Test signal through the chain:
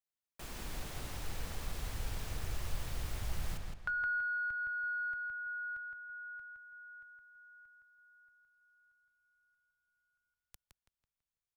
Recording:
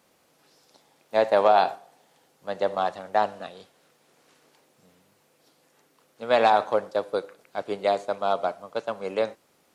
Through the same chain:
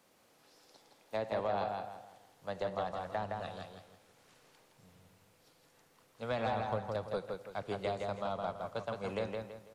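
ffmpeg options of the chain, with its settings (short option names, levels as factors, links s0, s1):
-filter_complex "[0:a]asubboost=boost=7:cutoff=110,acrossover=split=250[s0][s1];[s1]acompressor=threshold=0.0282:ratio=4[s2];[s0][s2]amix=inputs=2:normalize=0,asoftclip=type=tanh:threshold=0.126,asplit=2[s3][s4];[s4]adelay=165,lowpass=f=4900:p=1,volume=0.668,asplit=2[s5][s6];[s6]adelay=165,lowpass=f=4900:p=1,volume=0.35,asplit=2[s7][s8];[s8]adelay=165,lowpass=f=4900:p=1,volume=0.35,asplit=2[s9][s10];[s10]adelay=165,lowpass=f=4900:p=1,volume=0.35,asplit=2[s11][s12];[s12]adelay=165,lowpass=f=4900:p=1,volume=0.35[s13];[s5][s7][s9][s11][s13]amix=inputs=5:normalize=0[s14];[s3][s14]amix=inputs=2:normalize=0,volume=0.631"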